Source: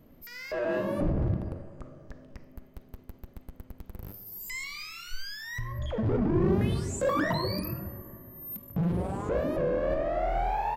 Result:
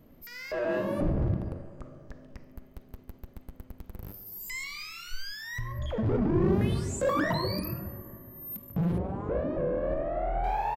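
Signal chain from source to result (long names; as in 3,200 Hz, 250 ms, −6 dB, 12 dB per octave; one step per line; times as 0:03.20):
0:08.98–0:10.44: head-to-tape spacing loss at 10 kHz 33 dB
slap from a distant wall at 24 metres, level −20 dB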